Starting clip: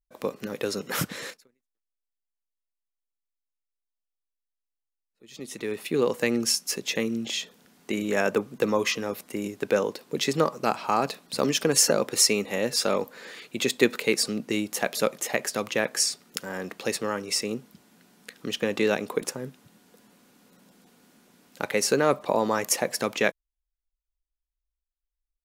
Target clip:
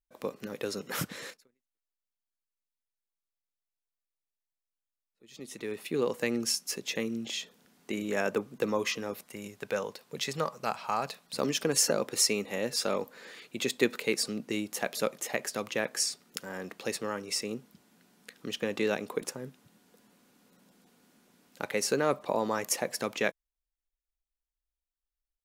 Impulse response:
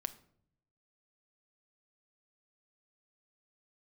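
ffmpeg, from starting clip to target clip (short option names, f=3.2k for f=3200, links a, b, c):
-filter_complex "[0:a]asettb=1/sr,asplit=3[a][b][c];[a]atrim=end=9.234[d];[b]atrim=start=9.23:end=11.34,asetpts=PTS-STARTPTS,afade=t=in:d=0.004:c=qsin,afade=t=out:st=2.106:d=0.004:c=qsin,equalizer=f=310:w=1.4:g=-10[e];[c]atrim=start=11.336[f];[d][e]acrossfade=d=0.004:c1=hsin:c2=qsin[g];[g][f]acrossfade=d=0.004:c1=qsin:c2=hsin,volume=-5.5dB"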